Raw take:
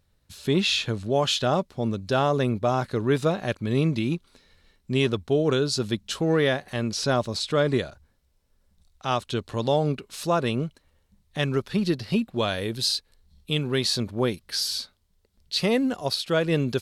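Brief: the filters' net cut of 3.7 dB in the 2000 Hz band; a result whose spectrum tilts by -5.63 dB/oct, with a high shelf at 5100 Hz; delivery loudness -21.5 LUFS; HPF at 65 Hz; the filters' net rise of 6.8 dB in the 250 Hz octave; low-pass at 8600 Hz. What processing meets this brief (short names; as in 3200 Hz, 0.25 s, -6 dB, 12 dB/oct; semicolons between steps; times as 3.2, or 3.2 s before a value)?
HPF 65 Hz; LPF 8600 Hz; bell 250 Hz +8.5 dB; bell 2000 Hz -6 dB; high shelf 5100 Hz +4 dB; gain +0.5 dB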